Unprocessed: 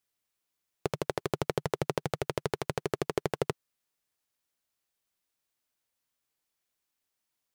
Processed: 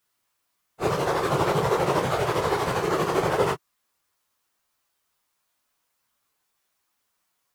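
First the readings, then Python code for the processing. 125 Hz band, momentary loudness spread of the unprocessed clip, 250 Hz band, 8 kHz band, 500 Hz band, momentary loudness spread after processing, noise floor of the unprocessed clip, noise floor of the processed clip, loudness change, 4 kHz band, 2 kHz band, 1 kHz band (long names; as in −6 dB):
+7.5 dB, 3 LU, +8.0 dB, +7.5 dB, +9.0 dB, 4 LU, −84 dBFS, −76 dBFS, +9.5 dB, +8.0 dB, +10.5 dB, +13.0 dB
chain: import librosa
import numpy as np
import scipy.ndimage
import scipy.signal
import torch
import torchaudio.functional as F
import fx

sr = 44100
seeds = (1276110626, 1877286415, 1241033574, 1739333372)

y = fx.phase_scramble(x, sr, seeds[0], window_ms=100)
y = fx.peak_eq(y, sr, hz=1100.0, db=7.5, octaves=0.95)
y = F.gain(torch.from_numpy(y), 8.0).numpy()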